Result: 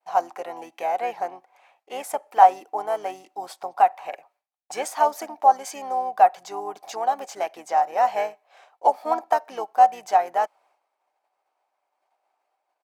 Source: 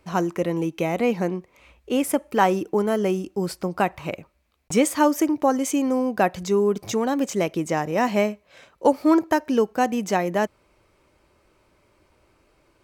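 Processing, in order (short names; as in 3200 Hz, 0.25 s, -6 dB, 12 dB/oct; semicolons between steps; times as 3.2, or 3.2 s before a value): harmoniser -5 st -6 dB; expander -52 dBFS; resonant high-pass 760 Hz, resonance Q 7.6; gain -8 dB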